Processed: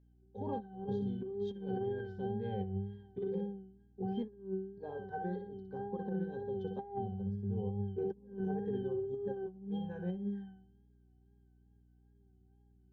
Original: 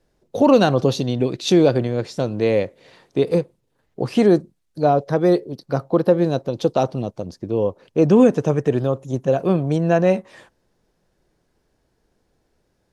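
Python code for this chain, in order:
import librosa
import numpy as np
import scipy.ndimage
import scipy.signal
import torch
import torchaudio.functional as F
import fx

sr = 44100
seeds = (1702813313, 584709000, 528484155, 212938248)

y = fx.octave_resonator(x, sr, note='G', decay_s=0.67)
y = fx.echo_feedback(y, sr, ms=61, feedback_pct=34, wet_db=-7)
y = fx.wow_flutter(y, sr, seeds[0], rate_hz=2.1, depth_cents=51.0)
y = fx.over_compress(y, sr, threshold_db=-38.0, ratio=-0.5)
y = fx.add_hum(y, sr, base_hz=60, snr_db=26)
y = F.gain(torch.from_numpy(y), 1.0).numpy()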